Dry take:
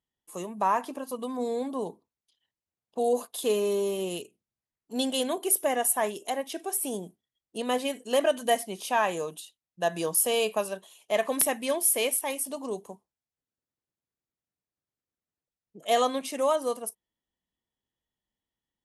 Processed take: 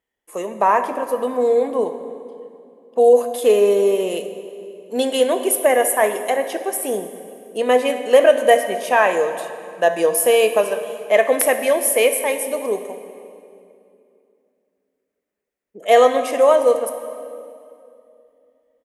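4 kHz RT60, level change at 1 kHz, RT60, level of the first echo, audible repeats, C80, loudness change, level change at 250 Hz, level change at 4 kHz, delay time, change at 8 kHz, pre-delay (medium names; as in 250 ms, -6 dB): 2.1 s, +9.5 dB, 2.7 s, -19.0 dB, 1, 10.5 dB, +10.5 dB, +6.5 dB, +5.0 dB, 64 ms, +4.5 dB, 3 ms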